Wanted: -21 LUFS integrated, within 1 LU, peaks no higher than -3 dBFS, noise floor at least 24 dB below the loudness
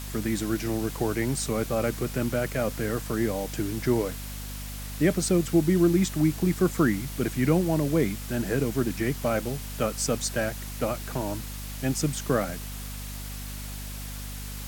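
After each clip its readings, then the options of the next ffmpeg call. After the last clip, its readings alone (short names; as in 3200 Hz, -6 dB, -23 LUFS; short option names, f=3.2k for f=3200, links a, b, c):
hum 50 Hz; harmonics up to 250 Hz; hum level -35 dBFS; noise floor -36 dBFS; noise floor target -52 dBFS; loudness -27.5 LUFS; peak -10.0 dBFS; loudness target -21.0 LUFS
-> -af "bandreject=f=50:t=h:w=6,bandreject=f=100:t=h:w=6,bandreject=f=150:t=h:w=6,bandreject=f=200:t=h:w=6,bandreject=f=250:t=h:w=6"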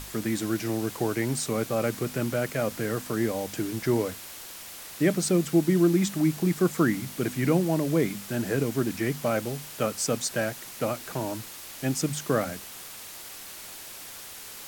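hum none; noise floor -42 dBFS; noise floor target -52 dBFS
-> -af "afftdn=nr=10:nf=-42"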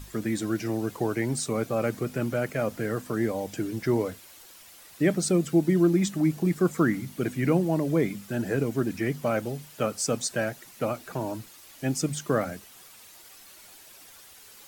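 noise floor -51 dBFS; noise floor target -52 dBFS
-> -af "afftdn=nr=6:nf=-51"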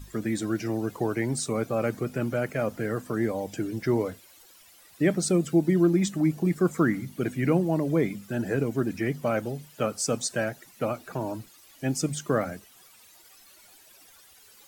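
noise floor -55 dBFS; loudness -27.5 LUFS; peak -10.0 dBFS; loudness target -21.0 LUFS
-> -af "volume=6.5dB"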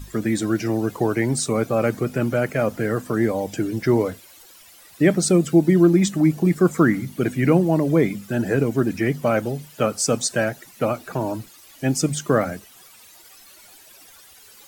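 loudness -21.0 LUFS; peak -3.5 dBFS; noise floor -48 dBFS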